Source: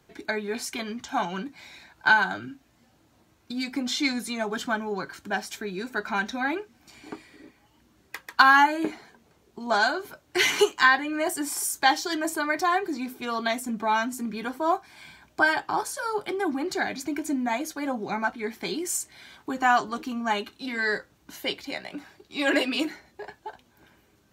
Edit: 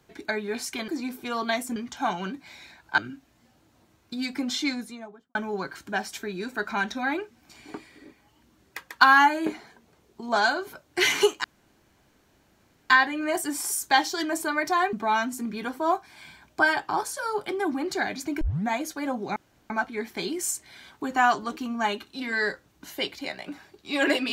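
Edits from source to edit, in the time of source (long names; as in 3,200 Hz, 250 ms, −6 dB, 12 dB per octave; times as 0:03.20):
0:02.10–0:02.36: remove
0:03.85–0:04.73: fade out and dull
0:10.82: splice in room tone 1.46 s
0:12.85–0:13.73: move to 0:00.88
0:17.21: tape start 0.26 s
0:18.16: splice in room tone 0.34 s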